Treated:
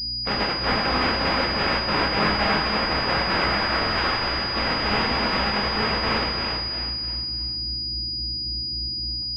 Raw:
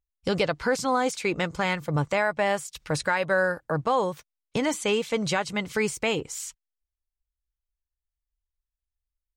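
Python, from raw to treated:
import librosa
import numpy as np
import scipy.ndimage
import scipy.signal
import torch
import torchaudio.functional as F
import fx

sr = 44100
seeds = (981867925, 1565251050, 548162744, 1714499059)

p1 = fx.spec_flatten(x, sr, power=0.17)
p2 = fx.highpass(p1, sr, hz=1100.0, slope=24, at=(3.26, 4.04))
p3 = fx.add_hum(p2, sr, base_hz=60, snr_db=12)
p4 = p3 + fx.echo_feedback(p3, sr, ms=336, feedback_pct=38, wet_db=-7, dry=0)
p5 = fx.echo_pitch(p4, sr, ms=385, semitones=1, count=3, db_per_echo=-3.0)
p6 = fx.rev_double_slope(p5, sr, seeds[0], early_s=0.53, late_s=2.8, knee_db=-21, drr_db=-2.0)
p7 = fx.buffer_glitch(p6, sr, at_s=(3.79,), block=1024, repeats=7)
p8 = fx.pwm(p7, sr, carrier_hz=4900.0)
y = F.gain(torch.from_numpy(p8), -1.0).numpy()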